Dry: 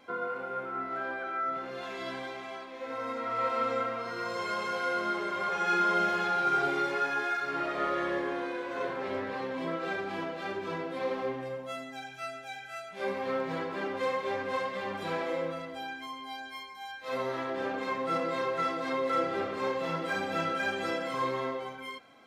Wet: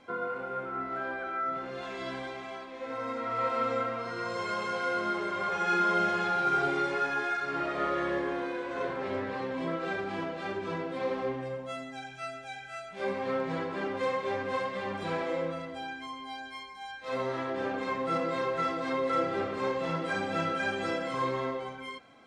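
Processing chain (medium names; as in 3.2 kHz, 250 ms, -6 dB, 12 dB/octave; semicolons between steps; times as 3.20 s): Chebyshev low-pass 9 kHz, order 3; bass shelf 150 Hz +7.5 dB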